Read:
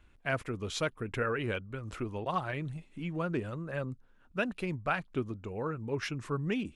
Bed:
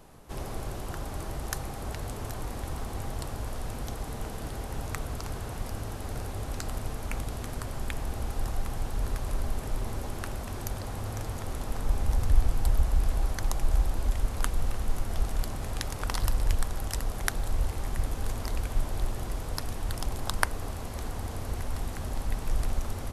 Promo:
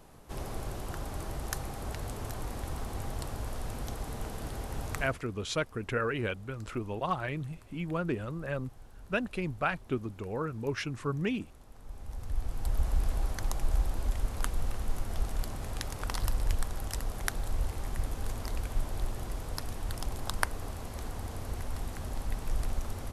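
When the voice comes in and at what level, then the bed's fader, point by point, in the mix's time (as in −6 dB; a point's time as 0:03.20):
4.75 s, +1.0 dB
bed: 0:05.00 −2 dB
0:05.25 −20.5 dB
0:11.73 −20.5 dB
0:12.88 −3.5 dB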